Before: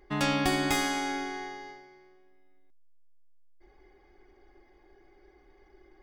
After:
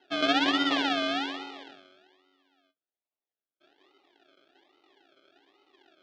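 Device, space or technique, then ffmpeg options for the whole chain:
circuit-bent sampling toy: -af "equalizer=f=280:t=o:w=0.24:g=15,acrusher=samples=37:mix=1:aa=0.000001:lfo=1:lforange=22.2:lforate=1.2,highpass=510,equalizer=f=520:t=q:w=4:g=-5,equalizer=f=990:t=q:w=4:g=-7,equalizer=f=2200:t=q:w=4:g=-3,equalizer=f=3300:t=q:w=4:g=7,lowpass=f=4400:w=0.5412,lowpass=f=4400:w=1.3066"

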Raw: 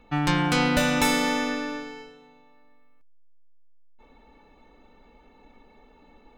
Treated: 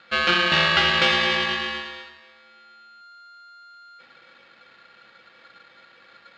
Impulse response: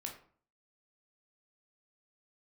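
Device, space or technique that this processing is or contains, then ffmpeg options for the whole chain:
ring modulator pedal into a guitar cabinet: -af "aeval=exprs='val(0)*sgn(sin(2*PI*1400*n/s))':c=same,highpass=82,equalizer=f=92:t=q:w=4:g=-8,equalizer=f=140:t=q:w=4:g=9,equalizer=f=310:t=q:w=4:g=5,equalizer=f=980:t=q:w=4:g=-8,equalizer=f=2900:t=q:w=4:g=8,lowpass=f=4300:w=0.5412,lowpass=f=4300:w=1.3066,volume=1.41"

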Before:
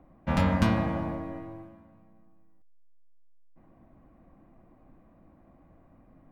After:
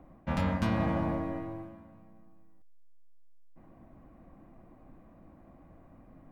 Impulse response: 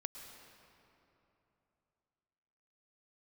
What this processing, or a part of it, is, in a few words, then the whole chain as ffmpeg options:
compression on the reversed sound: -af "areverse,acompressor=threshold=0.0398:ratio=6,areverse,volume=1.33"

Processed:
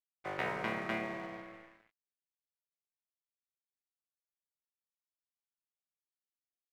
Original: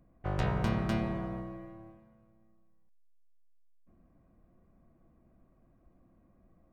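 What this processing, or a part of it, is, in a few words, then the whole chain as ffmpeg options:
pocket radio on a weak battery: -af "highpass=340,lowpass=3100,aeval=exprs='sgn(val(0))*max(abs(val(0))-0.00299,0)':c=same,equalizer=f=2100:t=o:w=0.55:g=10.5"

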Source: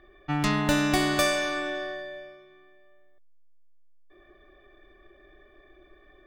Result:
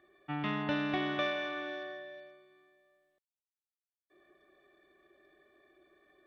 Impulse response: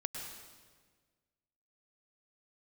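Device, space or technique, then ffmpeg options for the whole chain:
Bluetooth headset: -af "highpass=140,aresample=8000,aresample=44100,volume=0.376" -ar 32000 -c:a sbc -b:a 64k

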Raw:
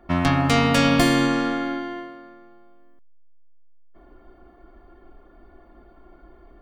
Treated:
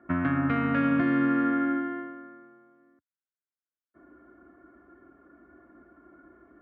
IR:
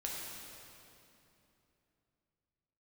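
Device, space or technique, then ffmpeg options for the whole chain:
bass amplifier: -af "acompressor=threshold=0.1:ratio=5,highpass=f=78:w=0.5412,highpass=f=78:w=1.3066,equalizer=f=290:t=q:w=4:g=8,equalizer=f=440:t=q:w=4:g=-3,equalizer=f=810:t=q:w=4:g=-9,equalizer=f=1500:t=q:w=4:g=10,lowpass=f=2100:w=0.5412,lowpass=f=2100:w=1.3066,volume=0.596"

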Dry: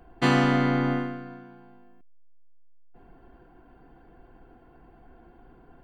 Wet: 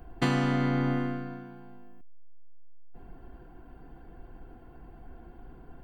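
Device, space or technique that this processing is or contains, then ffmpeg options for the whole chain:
ASMR close-microphone chain: -af "lowshelf=f=170:g=8,acompressor=threshold=0.0631:ratio=4,highshelf=f=7800:g=7.5"

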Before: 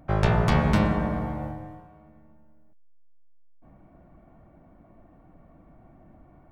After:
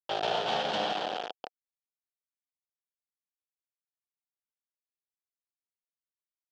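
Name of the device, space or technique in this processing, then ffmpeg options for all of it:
hand-held game console: -af "acrusher=bits=3:mix=0:aa=0.000001,highpass=450,equalizer=f=490:t=q:w=4:g=4,equalizer=f=740:t=q:w=4:g=10,equalizer=f=1100:t=q:w=4:g=-7,equalizer=f=2100:t=q:w=4:g=-9,equalizer=f=3200:t=q:w=4:g=9,lowpass=f=4800:w=0.5412,lowpass=f=4800:w=1.3066,volume=0.447"

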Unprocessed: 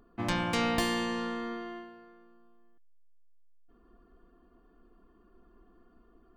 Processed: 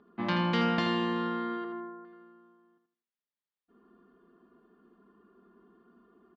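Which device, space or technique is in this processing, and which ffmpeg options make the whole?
kitchen radio: -filter_complex "[0:a]asettb=1/sr,asplit=3[s0][s1][s2];[s0]atrim=end=1.644[s3];[s1]atrim=start=1.64:end=2.05,asetpts=PTS-STARTPTS,afade=t=in:d=0.004:c=qsin,afade=t=out:st=0.406:d=0.004:c=qsin,lowpass=f=1600:w=0.5412,lowpass=f=1600:w=1.3066[s4];[s2]atrim=start=2.046[s5];[s3][s4]acrossfade=d=0.004:c1=hsin:c2=qsin[s6];[s6][s5]acrossfade=d=0.004:c1=qsin:c2=hsin,highpass=170,equalizer=f=190:t=q:w=4:g=3,equalizer=f=670:t=q:w=4:g=-4,equalizer=f=2500:t=q:w=4:g=-4,lowpass=f=4000:w=0.5412,lowpass=f=4000:w=1.3066,aecho=1:1:4.9:0.41,aecho=1:1:80|160|240|320:0.447|0.147|0.0486|0.0161,volume=1.12"

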